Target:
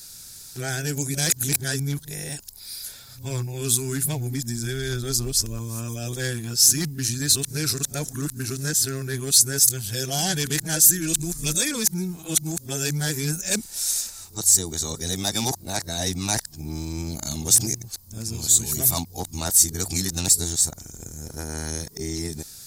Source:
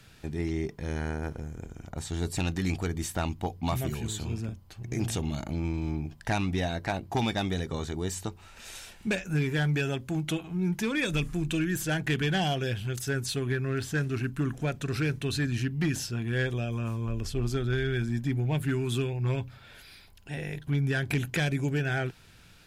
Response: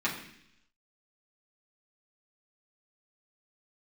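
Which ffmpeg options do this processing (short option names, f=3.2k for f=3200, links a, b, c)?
-af "areverse,aexciter=amount=5.5:drive=9.8:freq=4.3k"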